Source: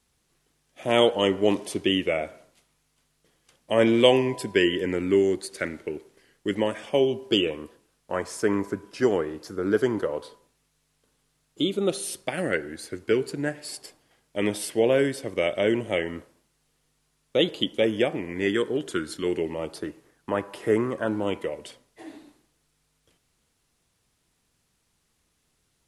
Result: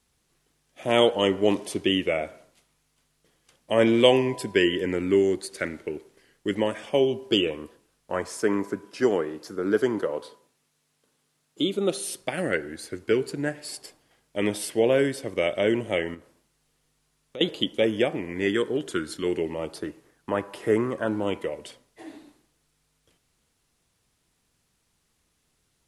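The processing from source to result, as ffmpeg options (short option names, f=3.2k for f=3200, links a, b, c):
-filter_complex "[0:a]asettb=1/sr,asplit=3[a][b][c];[a]atrim=end=8.284[d];[b]atrim=start=8.28:end=12.2,asetpts=PTS-STARTPTS,afade=t=in:d=0.004:c=qsin,afade=t=out:st=3.916:d=0.004:c=qsin,highpass=140[e];[c]atrim=start=12.196[f];[d][e]acrossfade=d=0.004:c1=hsin:c2=qsin[g];[g][f]acrossfade=d=0.004:c1=qsin:c2=hsin,asettb=1/sr,asplit=3[h][i][j];[h]atrim=end=16.144[k];[i]atrim=start=16.14:end=17.41,asetpts=PTS-STARTPTS,afade=t=in:d=0.004:c=qsin,afade=t=out:st=1.266:d=0.004:c=qsin,acompressor=threshold=-46dB:ratio=2:attack=3.2:release=140:knee=1:detection=peak[l];[j]atrim=start=17.406[m];[k][l]acrossfade=d=0.004:c1=hsin:c2=qsin[n];[n][m]acrossfade=d=0.004:c1=qsin:c2=hsin"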